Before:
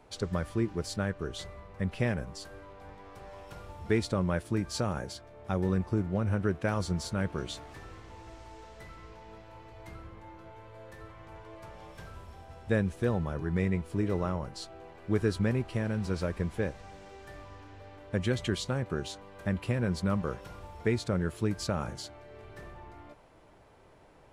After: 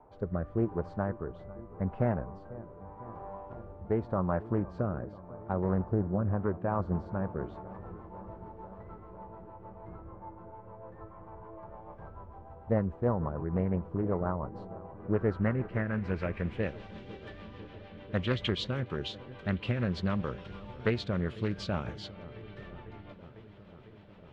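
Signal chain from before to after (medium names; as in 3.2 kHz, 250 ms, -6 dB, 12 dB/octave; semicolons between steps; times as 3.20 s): rotary cabinet horn 0.85 Hz, later 6.7 Hz, at 6.17 s; low-pass sweep 970 Hz -> 3.3 kHz, 14.86–16.86 s; on a send: feedback echo behind a low-pass 499 ms, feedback 80%, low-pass 1.3 kHz, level -18.5 dB; on the sum: loudspeaker Doppler distortion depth 0.38 ms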